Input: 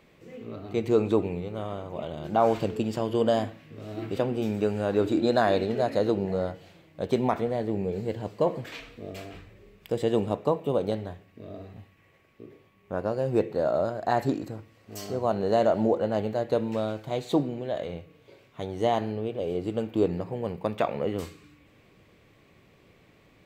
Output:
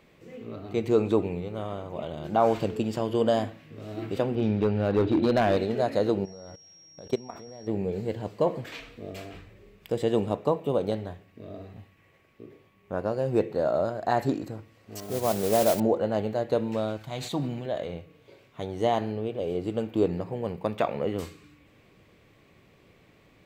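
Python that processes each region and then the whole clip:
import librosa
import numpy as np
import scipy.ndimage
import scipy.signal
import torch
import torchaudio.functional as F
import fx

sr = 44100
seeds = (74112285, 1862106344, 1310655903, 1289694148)

y = fx.chain(x, sr, fx.lowpass(hz=4500.0, slope=24),
    fx.low_shelf(hz=180.0, db=8.0),
    fx.clip_hard(threshold_db=-17.0), at=(4.35, 5.57))
y = fx.level_steps(y, sr, step_db=22, at=(6.24, 7.66), fade=0.02)
y = fx.dmg_tone(y, sr, hz=5600.0, level_db=-51.0, at=(6.24, 7.66), fade=0.02)
y = fx.chain(y, sr, fx.lowpass(hz=1300.0, slope=12),
    fx.mod_noise(seeds[0], snr_db=11), at=(15.0, 15.8))
y = fx.chain(y, sr, fx.peak_eq(hz=430.0, db=-11.5, octaves=1.3),
    fx.sustainer(db_per_s=39.0), at=(16.97, 17.66))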